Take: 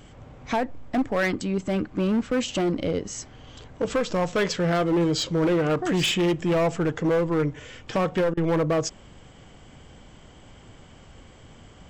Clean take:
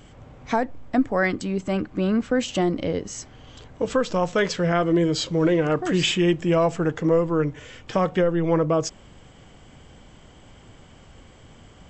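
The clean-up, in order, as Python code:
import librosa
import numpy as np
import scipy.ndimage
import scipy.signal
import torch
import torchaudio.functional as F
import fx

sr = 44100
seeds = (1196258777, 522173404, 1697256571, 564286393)

y = fx.fix_declip(x, sr, threshold_db=-18.5)
y = fx.fix_interpolate(y, sr, at_s=(8.34,), length_ms=31.0)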